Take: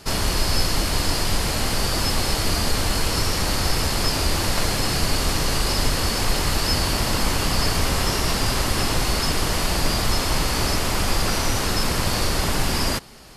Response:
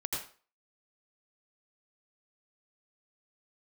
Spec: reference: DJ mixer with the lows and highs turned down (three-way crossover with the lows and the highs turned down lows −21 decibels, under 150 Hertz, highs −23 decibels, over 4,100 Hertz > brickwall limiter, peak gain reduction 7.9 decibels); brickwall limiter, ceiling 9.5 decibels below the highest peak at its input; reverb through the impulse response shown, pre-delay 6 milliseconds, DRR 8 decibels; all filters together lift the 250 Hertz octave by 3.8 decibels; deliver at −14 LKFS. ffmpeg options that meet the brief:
-filter_complex "[0:a]equalizer=frequency=250:width_type=o:gain=6.5,alimiter=limit=-15.5dB:level=0:latency=1,asplit=2[link_01][link_02];[1:a]atrim=start_sample=2205,adelay=6[link_03];[link_02][link_03]afir=irnorm=-1:irlink=0,volume=-11.5dB[link_04];[link_01][link_04]amix=inputs=2:normalize=0,acrossover=split=150 4100:gain=0.0891 1 0.0708[link_05][link_06][link_07];[link_05][link_06][link_07]amix=inputs=3:normalize=0,volume=18dB,alimiter=limit=-5dB:level=0:latency=1"

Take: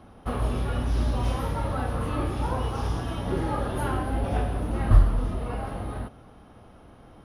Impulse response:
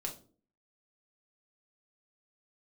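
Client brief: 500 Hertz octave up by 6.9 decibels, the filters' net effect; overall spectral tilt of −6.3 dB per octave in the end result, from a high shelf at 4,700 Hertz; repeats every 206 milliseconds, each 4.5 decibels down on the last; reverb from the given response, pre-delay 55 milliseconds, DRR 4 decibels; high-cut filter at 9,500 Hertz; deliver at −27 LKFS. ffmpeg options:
-filter_complex "[0:a]lowpass=9500,equalizer=frequency=500:width_type=o:gain=8.5,highshelf=frequency=4700:gain=-7,aecho=1:1:206|412|618|824|1030|1236|1442|1648|1854:0.596|0.357|0.214|0.129|0.0772|0.0463|0.0278|0.0167|0.01,asplit=2[link_01][link_02];[1:a]atrim=start_sample=2205,adelay=55[link_03];[link_02][link_03]afir=irnorm=-1:irlink=0,volume=-4dB[link_04];[link_01][link_04]amix=inputs=2:normalize=0,volume=-4dB"

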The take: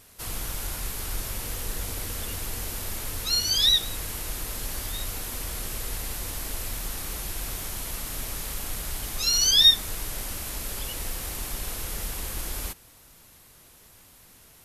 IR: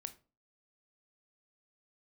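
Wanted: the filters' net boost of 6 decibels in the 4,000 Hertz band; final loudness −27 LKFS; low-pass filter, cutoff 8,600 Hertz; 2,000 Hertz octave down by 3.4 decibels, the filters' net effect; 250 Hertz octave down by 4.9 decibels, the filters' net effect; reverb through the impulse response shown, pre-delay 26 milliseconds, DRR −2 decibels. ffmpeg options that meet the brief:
-filter_complex "[0:a]lowpass=8600,equalizer=frequency=250:width_type=o:gain=-7,equalizer=frequency=2000:width_type=o:gain=-7,equalizer=frequency=4000:width_type=o:gain=8.5,asplit=2[link_01][link_02];[1:a]atrim=start_sample=2205,adelay=26[link_03];[link_02][link_03]afir=irnorm=-1:irlink=0,volume=5.5dB[link_04];[link_01][link_04]amix=inputs=2:normalize=0,volume=-16dB"

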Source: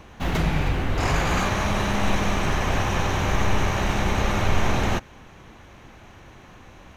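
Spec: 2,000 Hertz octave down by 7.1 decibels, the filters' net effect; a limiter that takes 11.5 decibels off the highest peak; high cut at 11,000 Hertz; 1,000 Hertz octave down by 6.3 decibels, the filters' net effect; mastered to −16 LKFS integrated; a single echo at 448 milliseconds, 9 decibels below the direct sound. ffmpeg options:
ffmpeg -i in.wav -af "lowpass=11000,equalizer=frequency=1000:width_type=o:gain=-6.5,equalizer=frequency=2000:width_type=o:gain=-7,alimiter=limit=-21dB:level=0:latency=1,aecho=1:1:448:0.355,volume=15dB" out.wav

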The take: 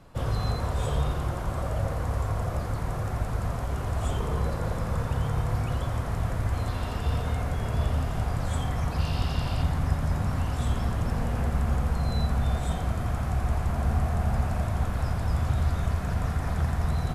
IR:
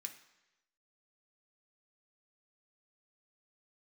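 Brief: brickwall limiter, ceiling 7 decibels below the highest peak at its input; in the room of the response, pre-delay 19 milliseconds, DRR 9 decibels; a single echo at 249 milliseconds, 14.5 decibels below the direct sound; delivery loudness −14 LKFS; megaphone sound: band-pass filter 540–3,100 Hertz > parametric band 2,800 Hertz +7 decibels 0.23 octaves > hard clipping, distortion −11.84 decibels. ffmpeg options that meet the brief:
-filter_complex "[0:a]alimiter=limit=-18.5dB:level=0:latency=1,aecho=1:1:249:0.188,asplit=2[link_01][link_02];[1:a]atrim=start_sample=2205,adelay=19[link_03];[link_02][link_03]afir=irnorm=-1:irlink=0,volume=-5dB[link_04];[link_01][link_04]amix=inputs=2:normalize=0,highpass=540,lowpass=3100,equalizer=frequency=2800:width_type=o:width=0.23:gain=7,asoftclip=type=hard:threshold=-36.5dB,volume=26dB"

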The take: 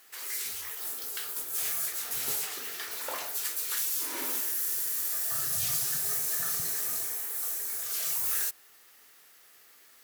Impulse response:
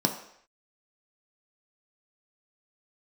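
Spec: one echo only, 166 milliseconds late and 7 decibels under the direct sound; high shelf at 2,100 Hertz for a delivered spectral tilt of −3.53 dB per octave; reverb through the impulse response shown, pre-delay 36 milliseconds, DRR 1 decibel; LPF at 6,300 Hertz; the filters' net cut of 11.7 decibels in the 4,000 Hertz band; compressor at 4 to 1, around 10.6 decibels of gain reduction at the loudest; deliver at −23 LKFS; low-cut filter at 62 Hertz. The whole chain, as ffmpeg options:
-filter_complex "[0:a]highpass=62,lowpass=6300,highshelf=frequency=2100:gain=-8,equalizer=frequency=4000:width_type=o:gain=-6,acompressor=threshold=-49dB:ratio=4,aecho=1:1:166:0.447,asplit=2[link_01][link_02];[1:a]atrim=start_sample=2205,adelay=36[link_03];[link_02][link_03]afir=irnorm=-1:irlink=0,volume=-11dB[link_04];[link_01][link_04]amix=inputs=2:normalize=0,volume=24dB"

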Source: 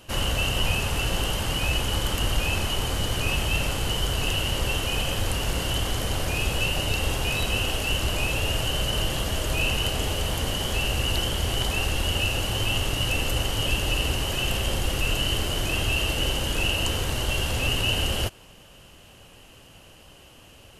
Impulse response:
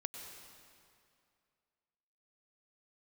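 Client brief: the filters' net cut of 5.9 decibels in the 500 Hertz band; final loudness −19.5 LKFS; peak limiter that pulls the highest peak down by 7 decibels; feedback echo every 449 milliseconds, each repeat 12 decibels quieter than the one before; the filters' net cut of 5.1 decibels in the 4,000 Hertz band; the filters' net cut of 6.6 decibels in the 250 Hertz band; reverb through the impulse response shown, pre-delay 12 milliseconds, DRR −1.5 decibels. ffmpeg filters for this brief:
-filter_complex "[0:a]equalizer=frequency=250:width_type=o:gain=-8.5,equalizer=frequency=500:width_type=o:gain=-5,equalizer=frequency=4000:width_type=o:gain=-8.5,alimiter=limit=-19dB:level=0:latency=1,aecho=1:1:449|898|1347:0.251|0.0628|0.0157,asplit=2[link_01][link_02];[1:a]atrim=start_sample=2205,adelay=12[link_03];[link_02][link_03]afir=irnorm=-1:irlink=0,volume=3dB[link_04];[link_01][link_04]amix=inputs=2:normalize=0,volume=6.5dB"

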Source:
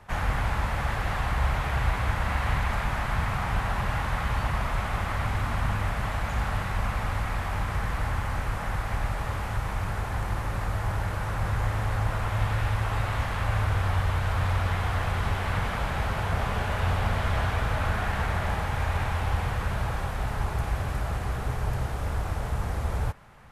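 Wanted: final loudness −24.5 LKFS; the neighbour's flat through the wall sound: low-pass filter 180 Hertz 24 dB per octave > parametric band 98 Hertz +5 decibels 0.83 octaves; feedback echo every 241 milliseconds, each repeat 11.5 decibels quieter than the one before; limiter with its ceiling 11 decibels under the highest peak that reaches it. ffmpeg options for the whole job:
ffmpeg -i in.wav -af "alimiter=limit=-24dB:level=0:latency=1,lowpass=frequency=180:width=0.5412,lowpass=frequency=180:width=1.3066,equalizer=frequency=98:width_type=o:width=0.83:gain=5,aecho=1:1:241|482|723:0.266|0.0718|0.0194,volume=8dB" out.wav

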